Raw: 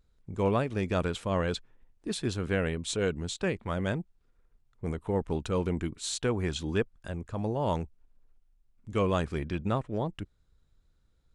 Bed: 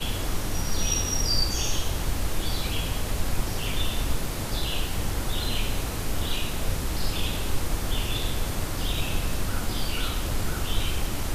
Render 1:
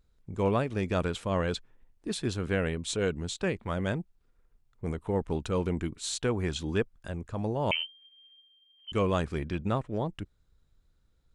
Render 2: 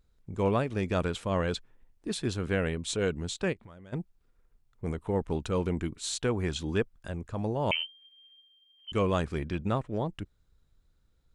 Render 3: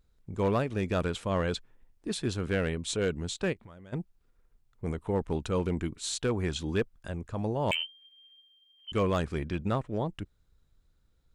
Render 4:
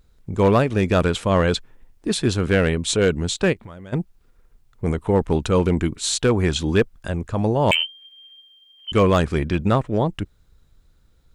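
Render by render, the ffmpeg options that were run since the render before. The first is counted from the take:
-filter_complex "[0:a]asettb=1/sr,asplit=3[a][b][c];[a]atrim=end=7.714[d];[b]atrim=start=7.71:end=8.92,asetpts=PTS-STARTPTS,afade=t=in:d=0.004:c=qsin,afade=t=out:st=1.206:d=0.004:c=qsin,lowpass=f=2.7k:t=q:w=0.5098,lowpass=f=2.7k:t=q:w=0.6013,lowpass=f=2.7k:t=q:w=0.9,lowpass=f=2.7k:t=q:w=2.563,afreqshift=-3200[e];[c]atrim=start=8.916[f];[d][e]acrossfade=d=0.004:c1=hsin:c2=qsin[g];[g][f]acrossfade=d=0.004:c1=qsin:c2=hsin"
-filter_complex "[0:a]asplit=3[a][b][c];[a]afade=t=out:st=3.52:d=0.02[d];[b]acompressor=threshold=-45dB:ratio=12:attack=3.2:release=140:knee=1:detection=peak,afade=t=in:st=3.52:d=0.02,afade=t=out:st=3.92:d=0.02[e];[c]afade=t=in:st=3.92:d=0.02[f];[d][e][f]amix=inputs=3:normalize=0"
-af "asoftclip=type=hard:threshold=-20dB"
-af "volume=11dB"

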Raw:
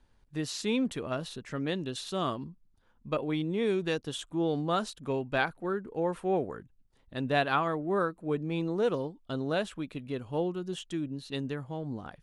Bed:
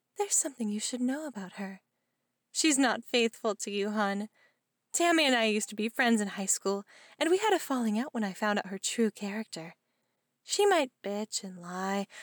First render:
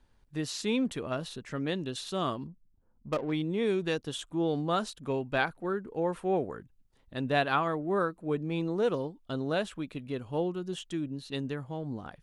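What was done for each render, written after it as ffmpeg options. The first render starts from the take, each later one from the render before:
-filter_complex "[0:a]asettb=1/sr,asplit=3[a][b][c];[a]atrim=end=2.474[d];[b]atrim=start=2.47:end=3.32,asetpts=PTS-STARTPTS,afade=t=in:d=0.004:c=qsin,afade=t=out:st=0.846:d=0.004:c=qsin,adynamicsmooth=sensitivity=6:basefreq=650[e];[c]atrim=start=3.316[f];[d][e]acrossfade=d=0.004:c1=hsin:c2=qsin[g];[g][f]acrossfade=d=0.004:c1=qsin:c2=hsin"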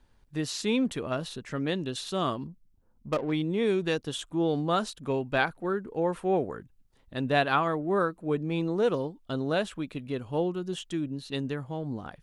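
-af "volume=2.5dB"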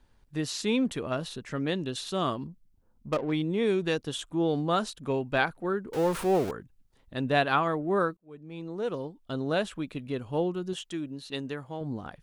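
-filter_complex "[0:a]asettb=1/sr,asplit=3[a][b][c];[a]atrim=end=5.934[d];[b]atrim=start=5.93:end=6.51,asetpts=PTS-STARTPTS,afade=t=in:d=0.004:c=qsin,afade=t=out:st=0.576:d=0.004:c=qsin,aeval=exprs='val(0)+0.5*0.0251*sgn(val(0))':c=same[e];[c]atrim=start=6.506[f];[d][e]acrossfade=d=0.004:c1=hsin:c2=qsin[g];[g][f]acrossfade=d=0.004:c1=qsin:c2=hsin,asettb=1/sr,asplit=3[h][i][j];[h]atrim=end=10.734[k];[i]atrim=start=10.73:end=11.81,asetpts=PTS-STARTPTS,afade=t=in:d=0.004:c=qsin,afade=t=out:st=1.076:d=0.004:c=qsin,lowshelf=f=220:g=-9[l];[j]atrim=start=11.806[m];[k][l]acrossfade=d=0.004:c1=hsin:c2=qsin[n];[n][m]acrossfade=d=0.004:c1=qsin:c2=hsin,asplit=2[o][p];[o]atrim=end=8.17,asetpts=PTS-STARTPTS,afade=t=out:st=8.166:d=0.004:c=hsin[q];[p]atrim=start=8.17,asetpts=PTS-STARTPTS,afade=t=in:d=1.4[r];[q][r]concat=n=2:v=0:a=1"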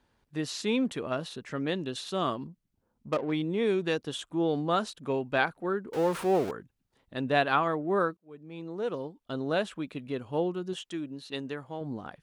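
-af "highpass=f=160:p=1,highshelf=f=5.4k:g=-5"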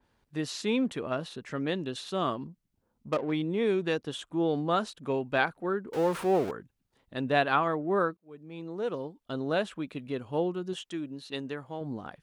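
-af "adynamicequalizer=threshold=0.00501:dfrequency=3300:dqfactor=0.7:tfrequency=3300:tqfactor=0.7:attack=5:release=100:ratio=0.375:range=2:mode=cutabove:tftype=highshelf"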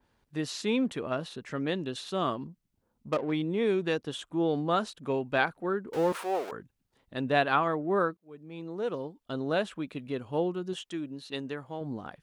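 -filter_complex "[0:a]asettb=1/sr,asplit=3[a][b][c];[a]atrim=end=6.124[d];[b]atrim=start=6.12:end=6.52,asetpts=PTS-STARTPTS,afade=t=in:d=0.004:c=qsin,afade=t=out:st=0.396:d=0.004:c=qsin,highpass=570[e];[c]atrim=start=6.516[f];[d][e]acrossfade=d=0.004:c1=hsin:c2=qsin[g];[g][f]acrossfade=d=0.004:c1=qsin:c2=hsin"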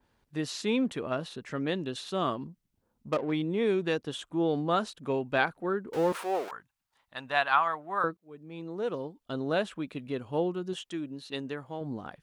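-filter_complex "[0:a]asettb=1/sr,asplit=3[a][b][c];[a]atrim=end=6.484[d];[b]atrim=start=6.48:end=8.04,asetpts=PTS-STARTPTS,afade=t=in:d=0.004:c=qsin,afade=t=out:st=1.556:d=0.004:c=qsin,lowshelf=f=600:t=q:w=1.5:g=-13.5[e];[c]atrim=start=8.036[f];[d][e]acrossfade=d=0.004:c1=hsin:c2=qsin[g];[g][f]acrossfade=d=0.004:c1=qsin:c2=hsin"

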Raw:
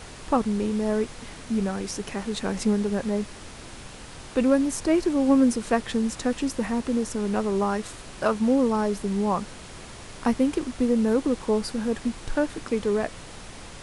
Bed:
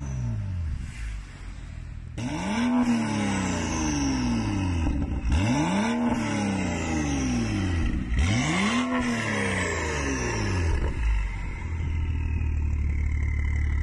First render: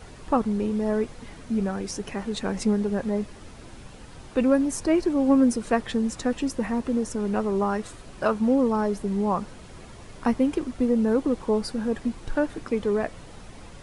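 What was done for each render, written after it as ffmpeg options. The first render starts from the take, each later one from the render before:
-af "afftdn=nr=8:nf=-42"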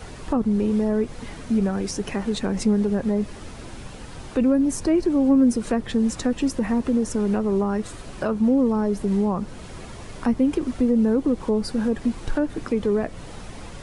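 -filter_complex "[0:a]acrossover=split=420[a][b];[b]acompressor=threshold=-36dB:ratio=2.5[c];[a][c]amix=inputs=2:normalize=0,asplit=2[d][e];[e]alimiter=limit=-22dB:level=0:latency=1:release=107,volume=0dB[f];[d][f]amix=inputs=2:normalize=0"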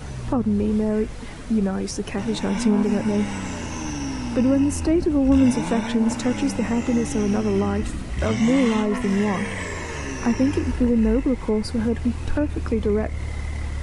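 -filter_complex "[1:a]volume=-3dB[a];[0:a][a]amix=inputs=2:normalize=0"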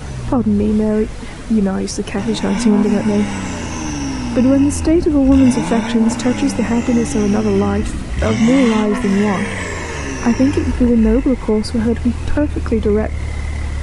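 -af "volume=6.5dB,alimiter=limit=-3dB:level=0:latency=1"

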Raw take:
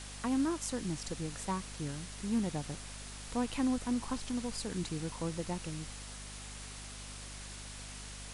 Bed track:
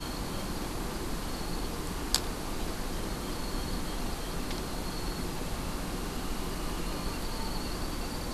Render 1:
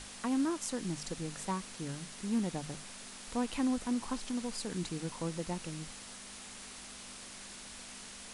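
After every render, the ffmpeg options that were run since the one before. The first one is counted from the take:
-af "bandreject=f=50:t=h:w=6,bandreject=f=100:t=h:w=6,bandreject=f=150:t=h:w=6"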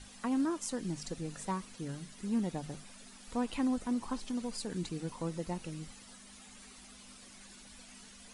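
-af "afftdn=nr=11:nf=-49"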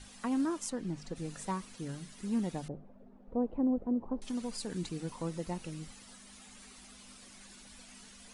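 -filter_complex "[0:a]asplit=3[a][b][c];[a]afade=t=out:st=0.69:d=0.02[d];[b]lowpass=f=2.1k:p=1,afade=t=in:st=0.69:d=0.02,afade=t=out:st=1.15:d=0.02[e];[c]afade=t=in:st=1.15:d=0.02[f];[d][e][f]amix=inputs=3:normalize=0,asettb=1/sr,asplit=3[g][h][i];[g]atrim=end=2.684[j];[h]atrim=start=2.68:end=4.22,asetpts=PTS-STARTPTS,afade=t=in:d=0.004:c=qsin,afade=t=out:st=1.536:d=0.004:c=qsin,lowpass=f=540:t=q:w=1.7[k];[i]atrim=start=4.216[l];[j][k]acrossfade=d=0.004:c1=hsin:c2=qsin[m];[m][l]acrossfade=d=0.004:c1=qsin:c2=hsin"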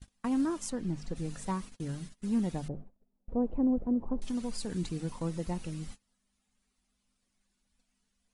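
-af "lowshelf=f=130:g=11,agate=range=-27dB:threshold=-42dB:ratio=16:detection=peak"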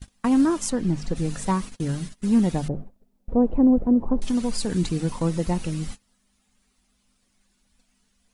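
-af "volume=10.5dB"

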